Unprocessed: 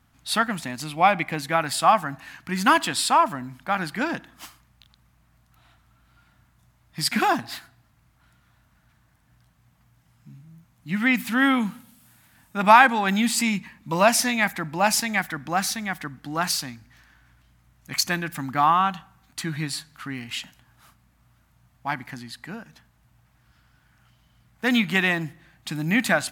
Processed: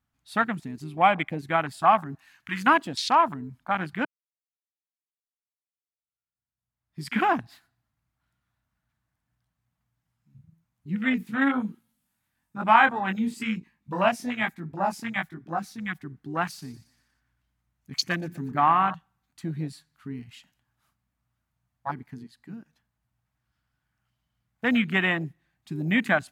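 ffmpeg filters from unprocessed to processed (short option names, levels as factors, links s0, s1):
-filter_complex "[0:a]asettb=1/sr,asplit=3[s0][s1][s2];[s0]atrim=end=2.174[s3];[s1]atrim=start=2.17:end=2.67,asetpts=PTS-STARTPTS,afade=t=in:d=0.004:c=qsin,afade=t=out:st=0.496:d=0.004:c=qsin,tiltshelf=f=870:g=-6[s4];[s2]atrim=start=2.666[s5];[s3][s4]acrossfade=d=0.004:c1=hsin:c2=qsin[s6];[s6][s5]acrossfade=d=0.004:c1=qsin:c2=hsin,asplit=3[s7][s8][s9];[s7]afade=t=out:st=10.95:d=0.02[s10];[s8]flanger=delay=17.5:depth=5:speed=1.1,afade=t=in:st=10.95:d=0.02,afade=t=out:st=15.79:d=0.02[s11];[s9]afade=t=in:st=15.79:d=0.02[s12];[s10][s11][s12]amix=inputs=3:normalize=0,asettb=1/sr,asplit=3[s13][s14][s15];[s13]atrim=end=16.464[s16];[s14]atrim=start=16.46:end=18.95,asetpts=PTS-STARTPTS,afade=t=in:d=0.004:c=qsin,afade=t=out:st=2.486:d=0.004:c=qsin,aecho=1:1:119|238|357|476|595:0.211|0.101|0.0487|0.0234|0.0112,atrim=end_sample=109809[s17];[s15]atrim=start=18.946[s18];[s16][s17]acrossfade=d=0.004:c1=hsin:c2=qsin[s19];[s19][s18]acrossfade=d=0.004:c1=qsin:c2=hsin,asplit=2[s20][s21];[s20]atrim=end=4.05,asetpts=PTS-STARTPTS,afade=t=out:st=4.046:d=0.004:c=hsin[s22];[s21]atrim=start=4.05,asetpts=PTS-STARTPTS,afade=t=in:d=3:c=exp[s23];[s22][s23]concat=n=2:v=0:a=1,afwtdn=0.0447,volume=0.841"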